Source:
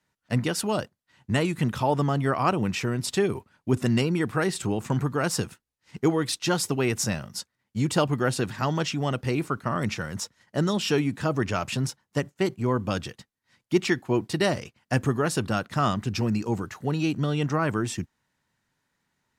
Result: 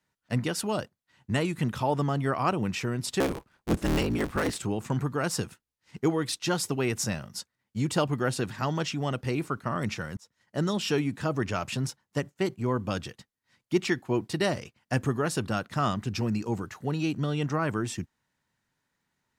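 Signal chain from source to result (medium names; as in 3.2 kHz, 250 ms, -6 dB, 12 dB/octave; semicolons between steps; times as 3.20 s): 3.20–4.60 s: cycle switcher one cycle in 3, inverted; 10.17–10.63 s: fade in; trim -3 dB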